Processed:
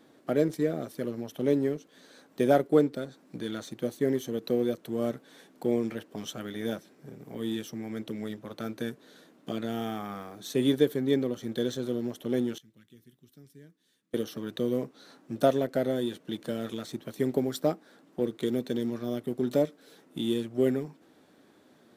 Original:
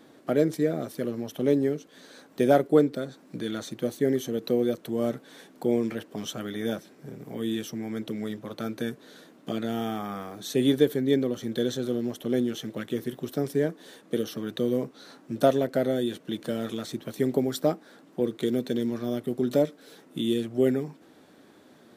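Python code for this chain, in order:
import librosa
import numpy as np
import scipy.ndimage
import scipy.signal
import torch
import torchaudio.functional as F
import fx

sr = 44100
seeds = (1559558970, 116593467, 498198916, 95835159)

p1 = fx.tone_stack(x, sr, knobs='6-0-2', at=(12.58, 14.14))
p2 = np.sign(p1) * np.maximum(np.abs(p1) - 10.0 ** (-36.0 / 20.0), 0.0)
p3 = p1 + F.gain(torch.from_numpy(p2), -8.0).numpy()
y = F.gain(torch.from_numpy(p3), -5.0).numpy()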